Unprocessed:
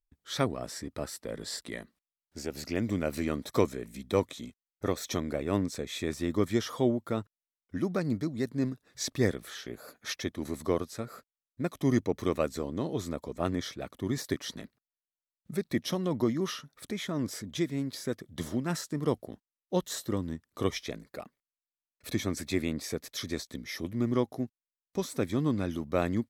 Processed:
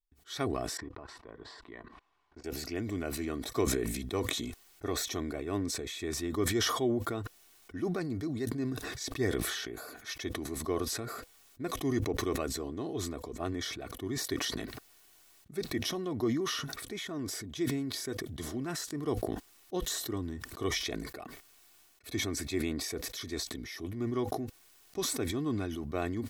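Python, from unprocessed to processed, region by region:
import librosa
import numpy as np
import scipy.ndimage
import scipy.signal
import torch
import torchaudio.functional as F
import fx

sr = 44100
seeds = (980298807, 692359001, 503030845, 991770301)

y = fx.chain(x, sr, fx.lowpass(hz=2500.0, slope=12),
    fx.peak_eq(hz=990.0, db=13.0, octaves=0.44),
    fx.level_steps(step_db=22), at=(0.77, 2.44))
y = fx.notch(y, sr, hz=500.0, q=16.0)
y = y + 0.51 * np.pad(y, (int(2.7 * sr / 1000.0), 0))[:len(y)]
y = fx.sustainer(y, sr, db_per_s=29.0)
y = y * librosa.db_to_amplitude(-6.0)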